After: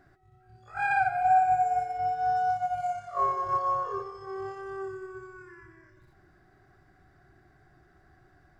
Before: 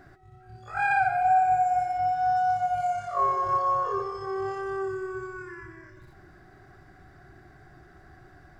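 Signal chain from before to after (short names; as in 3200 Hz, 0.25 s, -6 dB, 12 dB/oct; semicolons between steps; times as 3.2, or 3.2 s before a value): 1.62–2.49 whine 450 Hz -44 dBFS; upward expander 1.5:1, over -35 dBFS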